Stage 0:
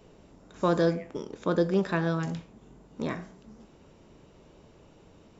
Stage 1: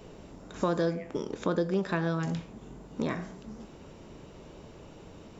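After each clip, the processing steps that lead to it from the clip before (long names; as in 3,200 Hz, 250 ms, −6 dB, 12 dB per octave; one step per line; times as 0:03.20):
downward compressor 2.5 to 1, threshold −36 dBFS, peak gain reduction 11 dB
level +6.5 dB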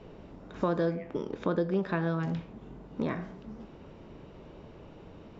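high-frequency loss of the air 200 metres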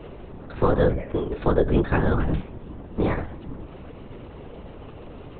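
linear-prediction vocoder at 8 kHz whisper
level +9 dB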